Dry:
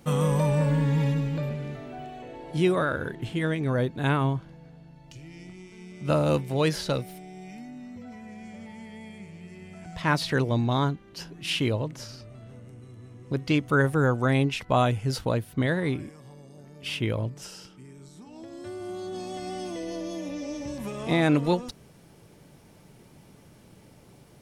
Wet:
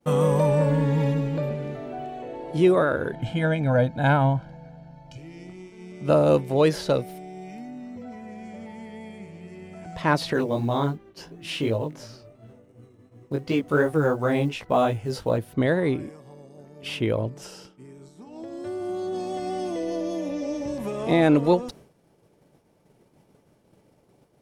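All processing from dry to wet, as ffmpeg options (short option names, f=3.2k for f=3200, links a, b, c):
-filter_complex "[0:a]asettb=1/sr,asplit=3[a][b][c];[a]atrim=end=3.124[d];[b]atrim=start=3.12:end=5.18,asetpts=PTS-STARTPTS,afade=t=in:d=0.004:c=qsin,afade=t=out:st=2.056:d=0.004:c=qsin,highshelf=f=10k:g=-11,aecho=1:1:1.3:0.89,atrim=end_sample=90846[e];[c]atrim=start=5.176[f];[d][e]acrossfade=d=0.004:c1=hsin:c2=qsin[g];[g][f]acrossfade=d=0.004:c1=qsin:c2=hsin,asettb=1/sr,asplit=3[h][i][j];[h]atrim=end=10.334[k];[i]atrim=start=10.33:end=15.38,asetpts=PTS-STARTPTS,afade=t=in:d=0.004:c=qsin,afade=t=out:st=5.046:d=0.004:c=qsin,acrusher=bits=8:mode=log:mix=0:aa=0.000001,flanger=delay=17.5:depth=3.2:speed=2.8[l];[j]atrim=start=15.376[m];[k][l]acrossfade=d=0.004:c1=hsin:c2=qsin[n];[n][m]acrossfade=d=0.004:c1=qsin:c2=hsin,acontrast=85,agate=range=-33dB:threshold=-37dB:ratio=3:detection=peak,equalizer=f=510:w=0.57:g=8.5,volume=-8.5dB"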